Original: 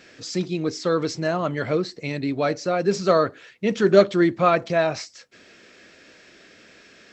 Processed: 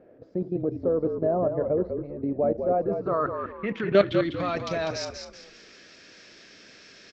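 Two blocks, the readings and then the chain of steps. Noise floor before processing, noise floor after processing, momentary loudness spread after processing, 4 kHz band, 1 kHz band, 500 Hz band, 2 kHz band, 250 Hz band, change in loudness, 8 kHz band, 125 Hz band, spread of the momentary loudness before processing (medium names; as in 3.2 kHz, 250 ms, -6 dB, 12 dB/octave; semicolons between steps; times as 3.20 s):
-52 dBFS, -52 dBFS, 11 LU, -6.0 dB, -5.5 dB, -3.5 dB, -7.5 dB, -5.0 dB, -4.5 dB, no reading, -5.0 dB, 11 LU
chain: level held to a coarse grid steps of 13 dB; low-pass sweep 600 Hz -> 5.5 kHz, 2.61–4.58 s; frequency-shifting echo 197 ms, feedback 34%, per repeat -48 Hz, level -6.5 dB; trim -2 dB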